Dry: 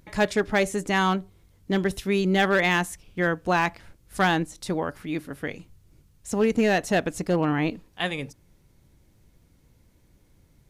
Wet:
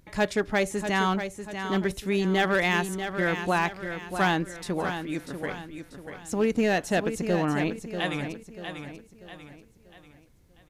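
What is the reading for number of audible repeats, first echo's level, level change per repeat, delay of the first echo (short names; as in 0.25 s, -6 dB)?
4, -8.5 dB, -7.5 dB, 0.64 s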